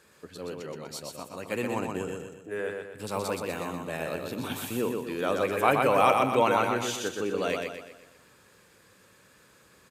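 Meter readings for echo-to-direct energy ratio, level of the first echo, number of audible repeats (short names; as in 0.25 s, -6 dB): -3.0 dB, -4.0 dB, 5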